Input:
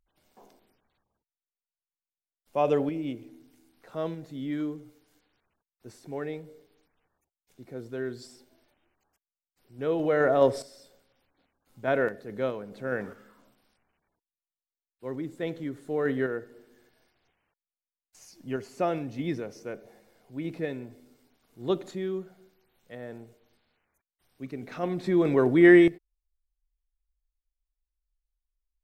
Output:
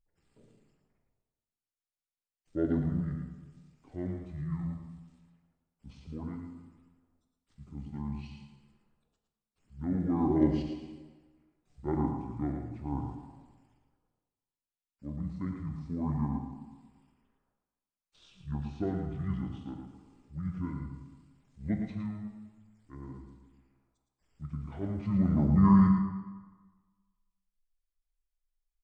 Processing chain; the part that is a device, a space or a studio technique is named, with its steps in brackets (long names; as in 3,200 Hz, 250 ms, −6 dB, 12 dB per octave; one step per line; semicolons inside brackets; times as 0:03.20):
monster voice (pitch shifter −10 semitones; low-shelf EQ 160 Hz +8 dB; single-tap delay 111 ms −7 dB; convolution reverb RT60 1.4 s, pre-delay 3 ms, DRR 4.5 dB)
level −8 dB